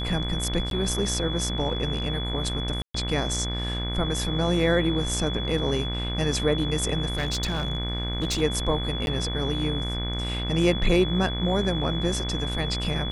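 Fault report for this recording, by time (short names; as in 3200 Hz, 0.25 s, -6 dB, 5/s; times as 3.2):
buzz 60 Hz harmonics 40 -30 dBFS
tone 3400 Hz -32 dBFS
0.7–0.71 gap
2.82–2.94 gap 0.124 s
7.08–8.42 clipped -21.5 dBFS
9.06–9.07 gap 11 ms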